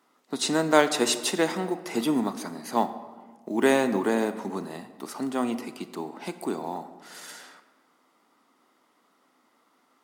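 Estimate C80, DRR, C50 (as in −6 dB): 13.5 dB, 11.0 dB, 12.0 dB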